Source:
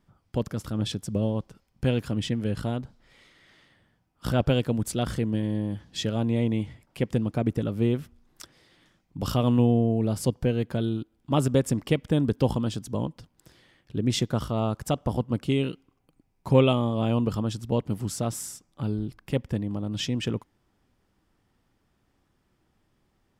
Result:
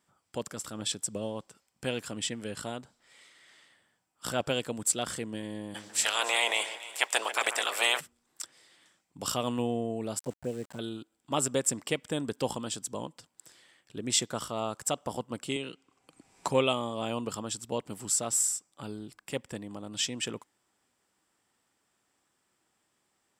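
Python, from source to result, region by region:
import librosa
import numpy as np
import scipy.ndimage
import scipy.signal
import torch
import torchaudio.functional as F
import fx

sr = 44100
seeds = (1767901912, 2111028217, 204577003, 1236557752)

y = fx.spec_clip(x, sr, under_db=30, at=(5.74, 7.99), fade=0.02)
y = fx.cheby1_highpass(y, sr, hz=560.0, order=2, at=(5.74, 7.99), fade=0.02)
y = fx.echo_alternate(y, sr, ms=141, hz=2100.0, feedback_pct=60, wet_db=-10.0, at=(5.74, 7.99), fade=0.02)
y = fx.chain(y, sr, fx.lowpass(hz=1100.0, slope=12),
    fx.env_flanger(rest_ms=4.3, full_db=-19.0),
    fx.sample_gate(floor_db=-44.5), at=(10.19, 10.79))
y = fx.chain(y, sr, fx.lowpass(hz=7900.0, slope=12),
    fx.band_squash(depth_pct=100), at=(15.56, 16.48))
y = fx.highpass(y, sr, hz=780.0, slope=6)
y = fx.peak_eq(y, sr, hz=7700.0, db=13.5, octaves=0.45)
y = fx.notch(y, sr, hz=6700.0, q=16.0)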